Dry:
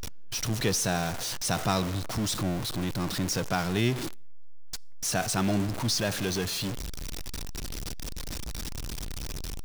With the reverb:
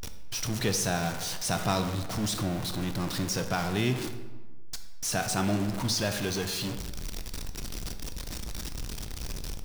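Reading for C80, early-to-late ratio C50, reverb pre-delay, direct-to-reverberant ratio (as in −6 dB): 11.0 dB, 9.0 dB, 15 ms, 7.5 dB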